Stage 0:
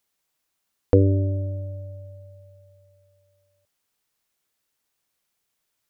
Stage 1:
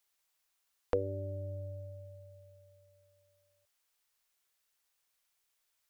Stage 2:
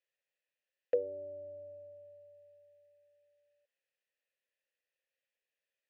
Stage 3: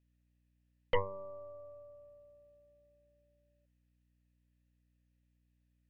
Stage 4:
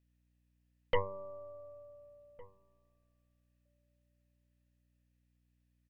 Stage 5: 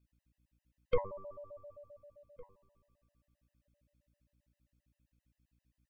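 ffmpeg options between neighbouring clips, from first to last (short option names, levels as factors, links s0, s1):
-filter_complex "[0:a]equalizer=f=190:w=0.59:g=-14,acrossover=split=470[s0][s1];[s0]acompressor=threshold=0.0158:ratio=6[s2];[s2][s1]amix=inputs=2:normalize=0,volume=0.794"
-filter_complex "[0:a]asplit=3[s0][s1][s2];[s0]bandpass=f=530:t=q:w=8,volume=1[s3];[s1]bandpass=f=1840:t=q:w=8,volume=0.501[s4];[s2]bandpass=f=2480:t=q:w=8,volume=0.355[s5];[s3][s4][s5]amix=inputs=3:normalize=0,volume=2"
-af "aeval=exprs='val(0)+0.000282*(sin(2*PI*60*n/s)+sin(2*PI*2*60*n/s)/2+sin(2*PI*3*60*n/s)/3+sin(2*PI*4*60*n/s)/4+sin(2*PI*5*60*n/s)/5)':c=same,aeval=exprs='0.106*(cos(1*acos(clip(val(0)/0.106,-1,1)))-cos(1*PI/2))+0.0422*(cos(6*acos(clip(val(0)/0.106,-1,1)))-cos(6*PI/2))':c=same,volume=0.75"
-filter_complex "[0:a]asplit=2[s0][s1];[s1]adelay=1458,volume=0.0794,highshelf=f=4000:g=-32.8[s2];[s0][s2]amix=inputs=2:normalize=0"
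-af "afftfilt=real='re*gt(sin(2*PI*7.6*pts/sr)*(1-2*mod(floor(b*sr/1024/520),2)),0)':imag='im*gt(sin(2*PI*7.6*pts/sr)*(1-2*mod(floor(b*sr/1024/520),2)),0)':win_size=1024:overlap=0.75,volume=1.26"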